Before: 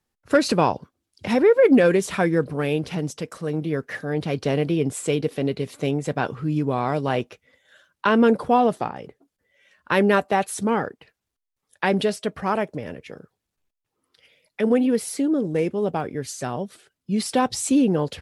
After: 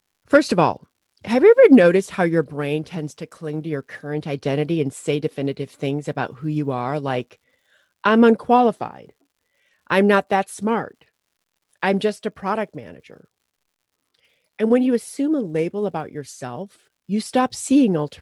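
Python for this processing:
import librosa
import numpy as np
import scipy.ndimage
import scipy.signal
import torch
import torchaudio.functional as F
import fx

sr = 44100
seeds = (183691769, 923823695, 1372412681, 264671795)

y = fx.dmg_crackle(x, sr, seeds[0], per_s=180.0, level_db=-49.0)
y = fx.upward_expand(y, sr, threshold_db=-32.0, expansion=1.5)
y = y * 10.0 ** (5.5 / 20.0)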